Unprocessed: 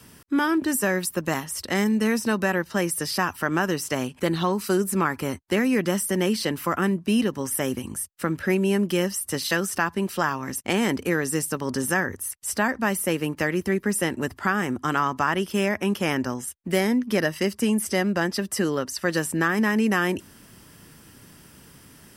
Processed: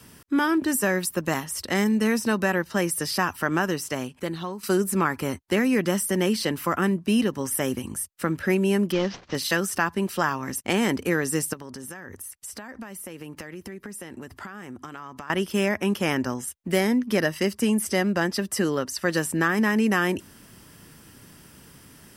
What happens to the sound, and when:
3.52–4.63 s: fade out, to -12 dB
8.92–9.35 s: CVSD coder 32 kbps
11.53–15.30 s: compression 12:1, threshold -34 dBFS

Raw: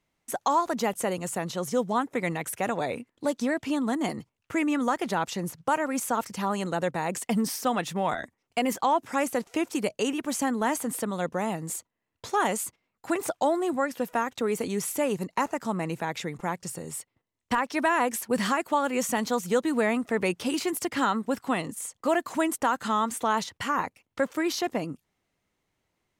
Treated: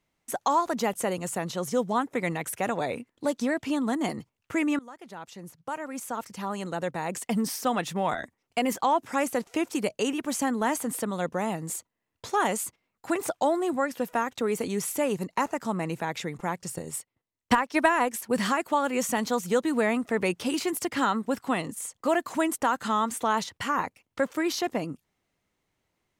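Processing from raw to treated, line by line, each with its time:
4.79–7.74 s: fade in, from -22.5 dB
16.73–18.24 s: transient shaper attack +6 dB, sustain -6 dB

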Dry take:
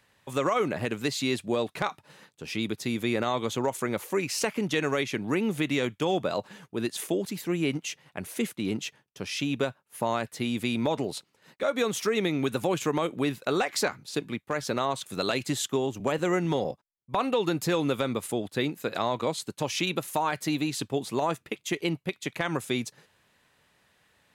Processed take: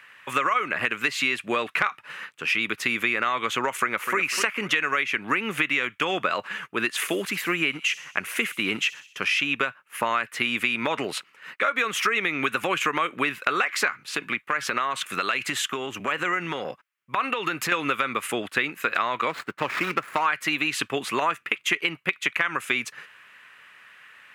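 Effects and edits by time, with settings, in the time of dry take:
3.76–4.17 s: echo throw 250 ms, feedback 35%, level -10 dB
6.92–9.34 s: feedback echo behind a high-pass 63 ms, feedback 56%, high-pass 4.5 kHz, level -12 dB
14.06–17.72 s: compression, threshold -29 dBFS
19.29–20.26 s: median filter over 15 samples
whole clip: high-pass 320 Hz 6 dB/octave; high-order bell 1.8 kHz +14.5 dB; compression, threshold -25 dBFS; trim +4.5 dB

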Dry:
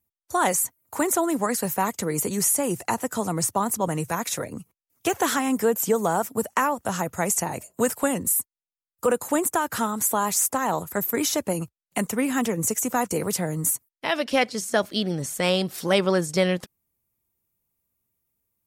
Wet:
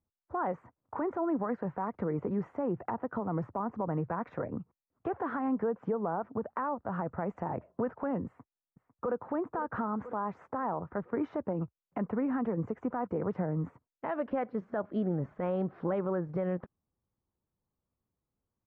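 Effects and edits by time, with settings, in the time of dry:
8.26–9.22 s: echo throw 500 ms, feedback 40%, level -14.5 dB
whole clip: low-pass 1.4 kHz 24 dB/octave; compression 3:1, threshold -26 dBFS; peak limiter -21.5 dBFS; trim -1.5 dB

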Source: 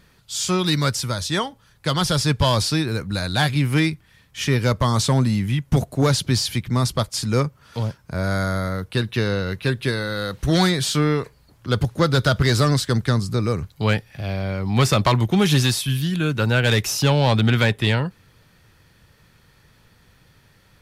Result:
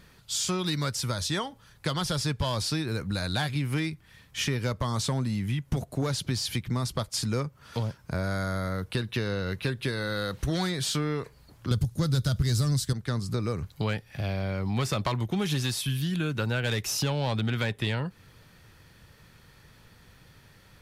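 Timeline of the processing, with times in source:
11.71–12.93 s: tone controls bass +14 dB, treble +14 dB
whole clip: compression 4:1, threshold -27 dBFS

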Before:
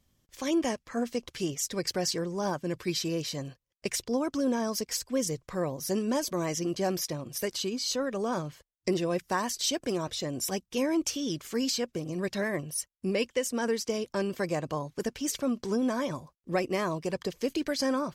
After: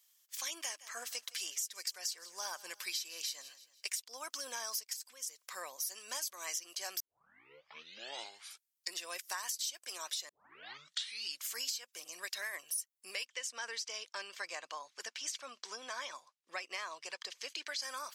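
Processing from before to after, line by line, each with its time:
0.59–4.00 s: feedback delay 163 ms, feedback 41%, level -21 dB
4.93–5.39 s: compression 4:1, threshold -41 dBFS
7.00 s: tape start 2.01 s
10.29 s: tape start 1.15 s
13.25–17.82 s: distance through air 98 m
whole clip: high-pass 980 Hz 12 dB/octave; tilt EQ +4 dB/octave; compression 6:1, threshold -33 dBFS; trim -3.5 dB

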